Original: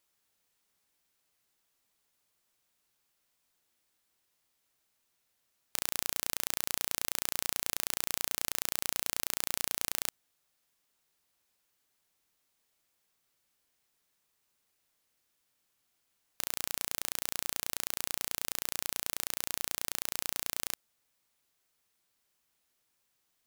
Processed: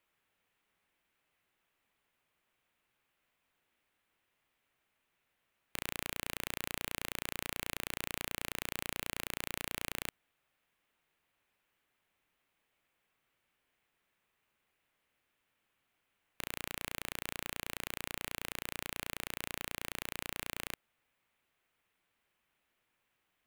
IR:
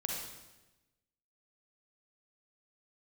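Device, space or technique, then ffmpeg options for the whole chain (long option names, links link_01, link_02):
one-band saturation: -filter_complex "[0:a]highshelf=frequency=3600:width_type=q:width=1.5:gain=-10.5,acrossover=split=490|2500[link_01][link_02][link_03];[link_02]asoftclip=type=tanh:threshold=-33dB[link_04];[link_01][link_04][link_03]amix=inputs=3:normalize=0,volume=2dB"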